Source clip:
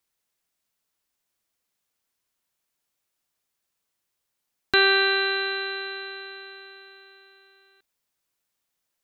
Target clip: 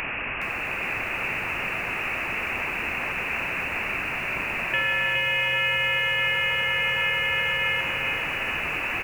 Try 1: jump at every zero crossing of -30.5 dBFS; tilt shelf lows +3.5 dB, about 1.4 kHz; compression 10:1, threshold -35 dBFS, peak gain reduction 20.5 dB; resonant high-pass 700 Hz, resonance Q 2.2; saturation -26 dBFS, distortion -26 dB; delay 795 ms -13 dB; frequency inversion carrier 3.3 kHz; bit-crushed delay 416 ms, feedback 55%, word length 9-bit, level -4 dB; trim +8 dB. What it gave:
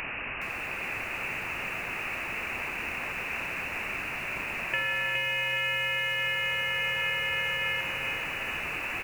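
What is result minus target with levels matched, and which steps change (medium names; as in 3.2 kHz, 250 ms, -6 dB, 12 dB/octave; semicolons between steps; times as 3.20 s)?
compression: peak gain reduction +6 dB; jump at every zero crossing: distortion -5 dB
change: jump at every zero crossing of -24.5 dBFS; change: compression 10:1, threshold -28 dBFS, peak gain reduction 14.5 dB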